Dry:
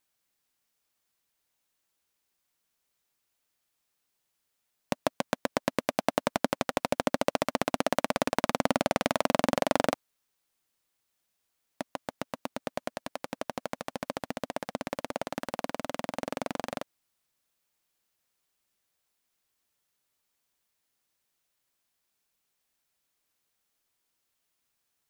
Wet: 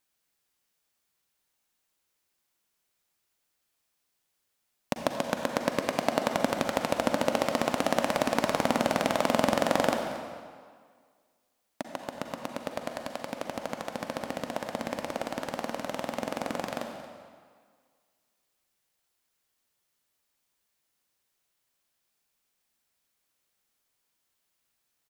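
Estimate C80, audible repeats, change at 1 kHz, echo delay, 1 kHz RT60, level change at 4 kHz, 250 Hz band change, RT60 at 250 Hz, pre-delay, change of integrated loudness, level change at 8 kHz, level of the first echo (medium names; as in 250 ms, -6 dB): 5.0 dB, 1, +1.5 dB, 229 ms, 1.9 s, +1.5 dB, +1.5 dB, 1.7 s, 38 ms, +1.5 dB, +1.5 dB, -17.5 dB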